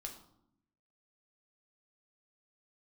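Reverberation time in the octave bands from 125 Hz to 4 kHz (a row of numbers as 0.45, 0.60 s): 1.1, 1.1, 0.80, 0.70, 0.50, 0.50 s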